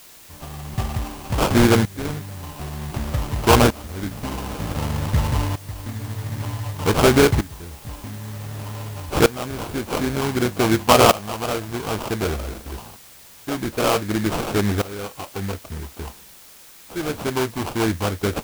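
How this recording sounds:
aliases and images of a low sample rate 1,900 Hz, jitter 20%
tremolo saw up 0.54 Hz, depth 90%
a quantiser's noise floor 8 bits, dither triangular

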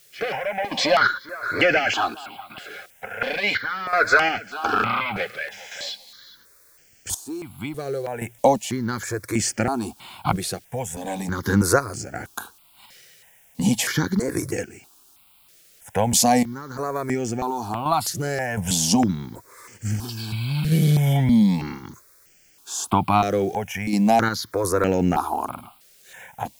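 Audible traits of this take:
sample-and-hold tremolo 2.8 Hz, depth 85%
a quantiser's noise floor 10 bits, dither triangular
notches that jump at a steady rate 3.1 Hz 250–3,800 Hz

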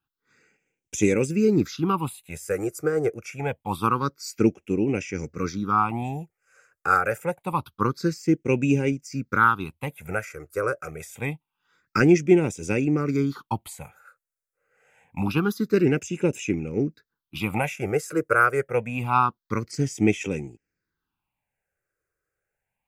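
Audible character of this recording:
phaser sweep stages 6, 0.26 Hz, lowest notch 230–1,200 Hz

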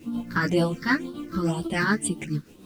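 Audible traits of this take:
phaser sweep stages 6, 2 Hz, lowest notch 690–1,900 Hz
a quantiser's noise floor 10 bits, dither none
tremolo triangle 6.9 Hz, depth 55%
a shimmering, thickened sound

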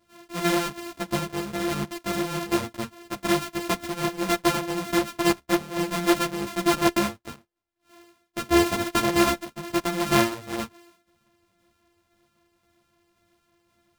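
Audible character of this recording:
a buzz of ramps at a fixed pitch in blocks of 128 samples
tremolo saw down 1.9 Hz, depth 30%
a shimmering, thickened sound

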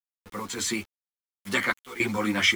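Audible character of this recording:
sample-and-hold tremolo, depth 100%
a quantiser's noise floor 8 bits, dither none
a shimmering, thickened sound

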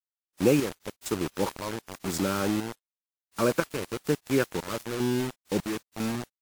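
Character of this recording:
chopped level 1 Hz, depth 65%, duty 60%
a quantiser's noise floor 6 bits, dither none
WMA

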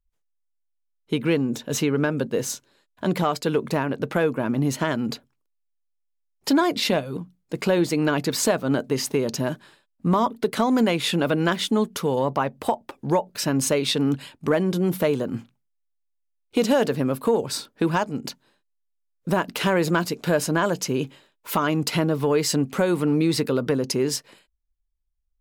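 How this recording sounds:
background noise floor −74 dBFS
spectral slope −5.0 dB per octave

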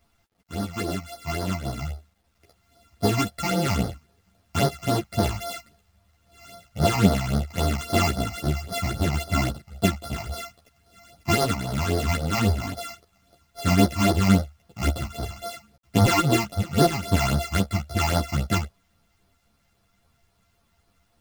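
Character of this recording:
a buzz of ramps at a fixed pitch in blocks of 64 samples
phaser sweep stages 8, 3.7 Hz, lowest notch 440–2,600 Hz
a quantiser's noise floor 12 bits, dither none
a shimmering, thickened sound

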